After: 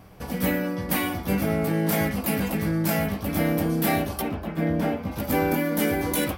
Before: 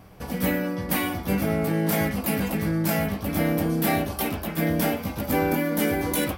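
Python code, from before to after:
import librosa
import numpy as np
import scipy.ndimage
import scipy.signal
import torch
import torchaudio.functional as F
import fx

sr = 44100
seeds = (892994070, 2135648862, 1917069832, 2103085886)

y = fx.lowpass(x, sr, hz=1400.0, slope=6, at=(4.2, 5.11), fade=0.02)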